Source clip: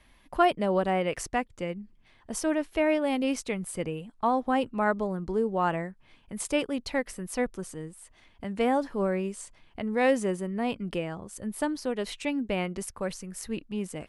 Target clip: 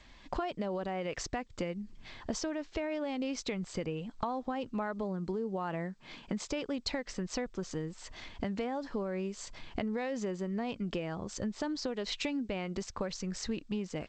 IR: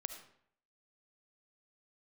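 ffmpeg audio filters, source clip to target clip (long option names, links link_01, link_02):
-filter_complex "[0:a]asplit=3[link_01][link_02][link_03];[link_01]afade=type=out:start_time=5.02:duration=0.02[link_04];[link_02]lowshelf=frequency=120:width_type=q:width=1.5:gain=-9.5,afade=type=in:start_time=5.02:duration=0.02,afade=type=out:start_time=6.42:duration=0.02[link_05];[link_03]afade=type=in:start_time=6.42:duration=0.02[link_06];[link_04][link_05][link_06]amix=inputs=3:normalize=0,dynaudnorm=framelen=190:gausssize=3:maxgain=8.5dB,alimiter=limit=-12.5dB:level=0:latency=1:release=77,acompressor=threshold=-35dB:ratio=10,aexciter=amount=1.8:drive=3:freq=3900,volume=2.5dB" -ar 16000 -c:a g722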